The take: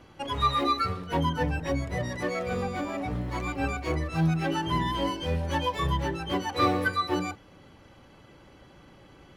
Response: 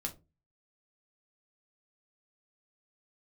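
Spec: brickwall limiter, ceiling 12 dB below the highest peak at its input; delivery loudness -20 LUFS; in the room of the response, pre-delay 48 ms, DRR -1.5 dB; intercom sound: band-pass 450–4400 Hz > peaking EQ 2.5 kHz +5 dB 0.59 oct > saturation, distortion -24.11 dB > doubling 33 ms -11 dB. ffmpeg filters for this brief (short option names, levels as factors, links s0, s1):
-filter_complex "[0:a]alimiter=limit=0.0708:level=0:latency=1,asplit=2[s0][s1];[1:a]atrim=start_sample=2205,adelay=48[s2];[s1][s2]afir=irnorm=-1:irlink=0,volume=1.19[s3];[s0][s3]amix=inputs=2:normalize=0,highpass=450,lowpass=4400,equalizer=f=2500:t=o:w=0.59:g=5,asoftclip=threshold=0.106,asplit=2[s4][s5];[s5]adelay=33,volume=0.282[s6];[s4][s6]amix=inputs=2:normalize=0,volume=3.55"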